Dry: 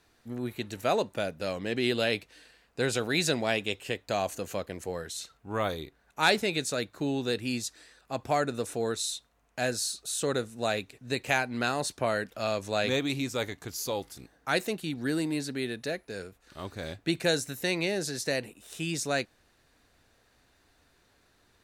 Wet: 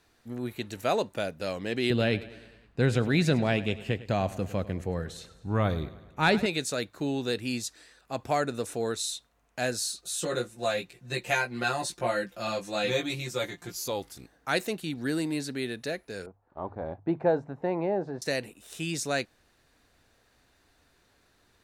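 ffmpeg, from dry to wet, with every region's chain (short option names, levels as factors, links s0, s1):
-filter_complex "[0:a]asettb=1/sr,asplit=3[s0][s1][s2];[s0]atrim=end=1.904[s3];[s1]atrim=start=1.9:end=6.46,asetpts=PTS-STARTPTS,afade=t=in:d=0.004:c=qsin,afade=t=out:st=4.556:d=0.004:c=qsin,bass=f=250:g=12,treble=f=4000:g=-10,aecho=1:1:102|204|306|408|510:0.141|0.0791|0.0443|0.0248|0.0139,atrim=end_sample=201096[s4];[s2]atrim=start=6.456[s5];[s3][s4]acrossfade=d=0.004:c1=hsin:c2=qsin[s6];[s6][s5]acrossfade=d=0.004:c1=qsin:c2=hsin,asettb=1/sr,asplit=3[s7][s8][s9];[s7]atrim=end=10.014[s10];[s8]atrim=start=10.01:end=13.88,asetpts=PTS-STARTPTS,afade=t=in:d=0.004:c=qsin,afade=t=out:st=3.866:d=0.004:c=qsin,aecho=1:1:5.7:0.95,atrim=end_sample=170667,flanger=delay=15.5:depth=2:speed=1.8[s11];[s9]atrim=start=13.876[s12];[s10][s11]acrossfade=d=0.004:c1=hsin:c2=qsin[s13];[s13][s12]acrossfade=d=0.004:c1=qsin:c2=hsin,asettb=1/sr,asplit=3[s14][s15][s16];[s14]atrim=end=16.264[s17];[s15]atrim=start=16.26:end=18.22,asetpts=PTS-STARTPTS,afade=t=in:d=0.004:c=qsin,afade=t=out:st=1.956:d=0.004:c=qsin,agate=range=0.355:threshold=0.00282:ratio=16:release=100:detection=peak,lowpass=f=860:t=q:w=3.3,bandreject=f=50:t=h:w=6,bandreject=f=100:t=h:w=6,bandreject=f=150:t=h:w=6[s18];[s16]atrim=start=18.216[s19];[s17][s18]acrossfade=d=0.004:c1=hsin:c2=qsin[s20];[s20][s19]acrossfade=d=0.004:c1=qsin:c2=hsin"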